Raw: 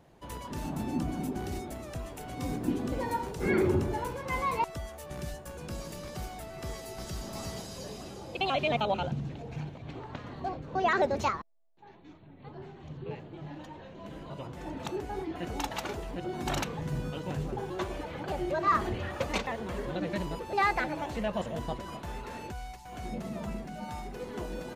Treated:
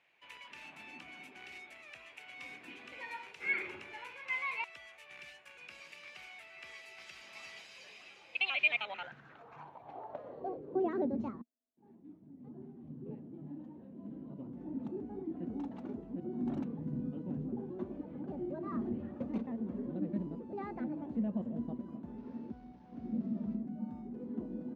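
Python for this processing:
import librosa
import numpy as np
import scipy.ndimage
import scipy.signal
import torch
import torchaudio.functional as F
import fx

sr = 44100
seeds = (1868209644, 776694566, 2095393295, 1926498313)

y = fx.delta_mod(x, sr, bps=32000, step_db=-39.0, at=(22.18, 23.56))
y = fx.filter_sweep_bandpass(y, sr, from_hz=2400.0, to_hz=240.0, start_s=8.75, end_s=11.16, q=5.0)
y = y * 10.0 ** (7.0 / 20.0)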